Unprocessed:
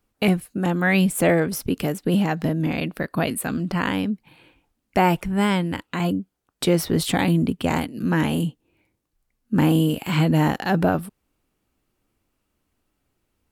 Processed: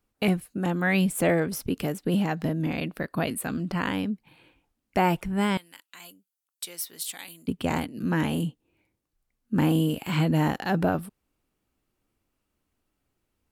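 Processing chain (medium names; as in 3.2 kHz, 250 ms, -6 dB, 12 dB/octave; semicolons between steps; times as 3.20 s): 5.57–7.48 s: differentiator; trim -4.5 dB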